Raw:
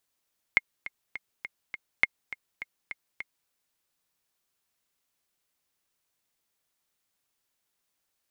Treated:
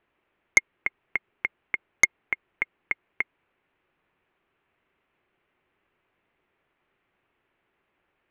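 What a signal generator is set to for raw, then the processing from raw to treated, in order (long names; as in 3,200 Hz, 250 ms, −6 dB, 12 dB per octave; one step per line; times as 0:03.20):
click track 205 BPM, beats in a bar 5, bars 2, 2,140 Hz, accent 16 dB −6.5 dBFS
Butterworth low-pass 2,700 Hz 36 dB per octave
parametric band 370 Hz +7 dB 0.39 octaves
in parallel at −2.5 dB: sine wavefolder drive 9 dB, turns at −7.5 dBFS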